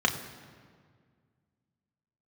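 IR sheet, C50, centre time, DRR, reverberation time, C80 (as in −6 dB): 10.5 dB, 21 ms, 2.0 dB, 1.9 s, 11.0 dB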